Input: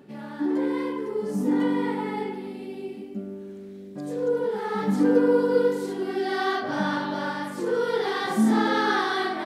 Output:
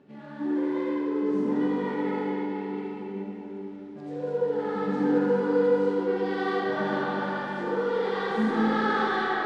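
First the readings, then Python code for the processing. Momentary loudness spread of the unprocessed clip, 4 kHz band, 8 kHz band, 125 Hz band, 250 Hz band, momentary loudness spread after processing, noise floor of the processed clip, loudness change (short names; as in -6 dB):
15 LU, -6.0 dB, n/a, -1.5 dB, -2.0 dB, 12 LU, -41 dBFS, -2.0 dB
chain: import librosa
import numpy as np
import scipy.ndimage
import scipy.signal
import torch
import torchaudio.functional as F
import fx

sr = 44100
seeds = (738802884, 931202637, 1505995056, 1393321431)

y = fx.cvsd(x, sr, bps=64000)
y = scipy.signal.sosfilt(scipy.signal.butter(2, 3400.0, 'lowpass', fs=sr, output='sos'), y)
y = y + 10.0 ** (-11.0 / 20.0) * np.pad(y, (int(79 * sr / 1000.0), 0))[:len(y)]
y = fx.rev_freeverb(y, sr, rt60_s=4.3, hf_ratio=0.6, predelay_ms=5, drr_db=-3.5)
y = F.gain(torch.from_numpy(y), -6.5).numpy()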